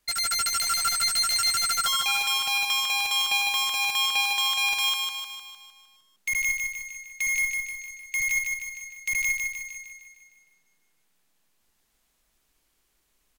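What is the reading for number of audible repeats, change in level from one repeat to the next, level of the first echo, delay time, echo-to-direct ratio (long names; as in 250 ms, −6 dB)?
7, −5.0 dB, −4.0 dB, 153 ms, −2.5 dB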